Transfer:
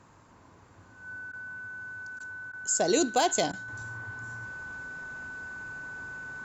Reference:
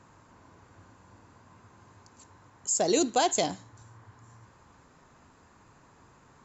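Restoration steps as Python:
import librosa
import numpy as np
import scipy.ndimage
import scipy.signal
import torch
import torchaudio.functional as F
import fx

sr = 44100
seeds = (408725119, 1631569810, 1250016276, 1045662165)

y = fx.fix_declip(x, sr, threshold_db=-15.0)
y = fx.notch(y, sr, hz=1500.0, q=30.0)
y = fx.fix_interpolate(y, sr, at_s=(1.32, 2.19, 2.52, 3.52), length_ms=11.0)
y = fx.fix_level(y, sr, at_s=3.68, step_db=-7.5)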